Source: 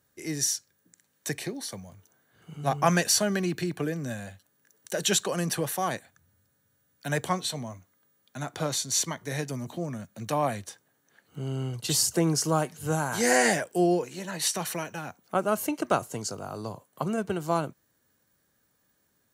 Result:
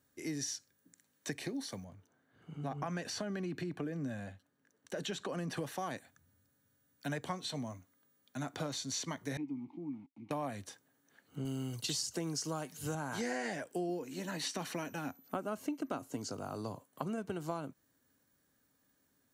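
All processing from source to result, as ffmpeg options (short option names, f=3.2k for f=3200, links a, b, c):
-filter_complex "[0:a]asettb=1/sr,asplit=3[a][b][c];[a]atrim=end=1.844[d];[b]atrim=start=1.84:end=5.57,asetpts=PTS-STARTPTS,afade=t=in:d=0.004:c=qsin,afade=t=out:st=3.726:d=0.004:c=qsin,lowpass=f=2.4k:p=1,acompressor=threshold=-29dB:ratio=2.5:attack=3.2:release=140:knee=1:detection=peak[e];[c]atrim=start=5.566[f];[d][e]acrossfade=d=0.004:c1=hsin:c2=qsin[g];[g][f]acrossfade=d=0.004:c1=qsin:c2=hsin,asettb=1/sr,asplit=3[h][i][j];[h]atrim=end=9.374[k];[i]atrim=start=9.37:end=10.31,asetpts=PTS-STARTPTS,afade=t=in:d=0.004:c=qsin,afade=t=out:st=0.936:d=0.004:c=qsin,bass=f=250:g=9,treble=f=4k:g=-9,aeval=exprs='val(0)*gte(abs(val(0)),0.00596)':c=same,asplit=3[l][m][n];[l]bandpass=f=300:t=q:w=8,volume=0dB[o];[m]bandpass=f=870:t=q:w=8,volume=-6dB[p];[n]bandpass=f=2.24k:t=q:w=8,volume=-9dB[q];[o][p][q]amix=inputs=3:normalize=0[r];[j]atrim=start=10.306[s];[k][r]acrossfade=d=0.004:c1=hsin:c2=qsin[t];[t][s]acrossfade=d=0.004:c1=qsin:c2=hsin,asettb=1/sr,asplit=3[u][v][w];[u]atrim=end=11.454[x];[v]atrim=start=11.45:end=12.95,asetpts=PTS-STARTPTS,afade=t=in:d=0.004:c=qsin,afade=t=out:st=1.496:d=0.004:c=qsin,highpass=49,aemphasis=mode=production:type=75fm[y];[w]atrim=start=12.946[z];[x][y]acrossfade=d=0.004:c1=hsin:c2=qsin[aa];[aa][z]acrossfade=d=0.004:c1=qsin:c2=hsin,asettb=1/sr,asplit=3[ab][ac][ad];[ab]atrim=end=13.894[ae];[ac]atrim=start=13.89:end=16.29,asetpts=PTS-STARTPTS,afade=t=in:d=0.004:c=qsin,afade=t=out:st=2.396:d=0.004:c=qsin,equalizer=f=270:t=o:w=0.42:g=6.5,aeval=exprs='val(0)+0.00126*sin(2*PI*12000*n/s)':c=same[af];[ad]atrim=start=16.286[ag];[ae][af]acrossfade=d=0.004:c1=hsin:c2=qsin[ah];[ah][ag]acrossfade=d=0.004:c1=qsin:c2=hsin,acrossover=split=6100[ai][aj];[aj]acompressor=threshold=-46dB:ratio=4:attack=1:release=60[ak];[ai][ak]amix=inputs=2:normalize=0,equalizer=f=270:w=5.8:g=9,acompressor=threshold=-30dB:ratio=6,volume=-4.5dB"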